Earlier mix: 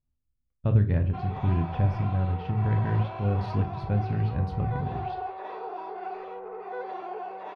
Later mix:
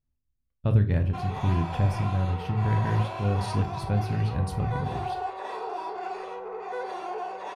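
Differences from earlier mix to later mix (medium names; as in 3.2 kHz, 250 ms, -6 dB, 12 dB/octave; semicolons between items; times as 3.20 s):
background: send on; master: remove distance through air 270 m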